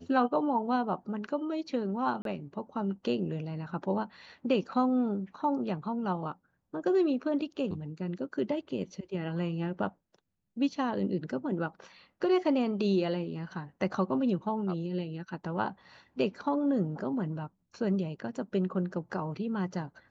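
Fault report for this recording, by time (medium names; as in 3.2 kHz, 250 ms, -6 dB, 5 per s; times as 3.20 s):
2.22–2.25 s: dropout 32 ms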